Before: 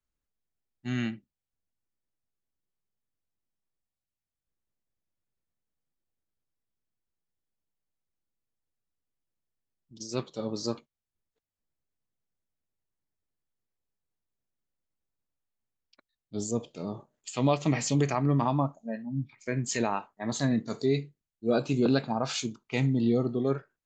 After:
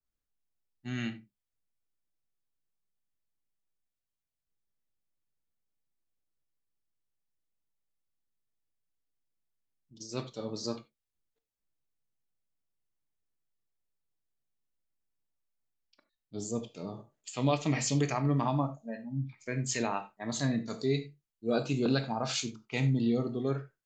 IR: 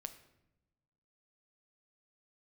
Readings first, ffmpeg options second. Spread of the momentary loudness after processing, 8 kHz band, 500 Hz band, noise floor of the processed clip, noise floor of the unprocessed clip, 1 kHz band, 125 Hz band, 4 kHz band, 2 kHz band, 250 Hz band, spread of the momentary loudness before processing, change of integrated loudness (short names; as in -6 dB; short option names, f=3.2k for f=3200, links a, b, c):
13 LU, -1.0 dB, -4.0 dB, under -85 dBFS, under -85 dBFS, -3.0 dB, -2.0 dB, -0.5 dB, -1.5 dB, -3.5 dB, 13 LU, -3.0 dB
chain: -filter_complex "[1:a]atrim=start_sample=2205,atrim=end_sample=4410[a];[0:a][a]afir=irnorm=-1:irlink=0,adynamicequalizer=threshold=0.00708:dfrequency=1500:dqfactor=0.7:tfrequency=1500:tqfactor=0.7:attack=5:release=100:ratio=0.375:range=2:mode=boostabove:tftype=highshelf"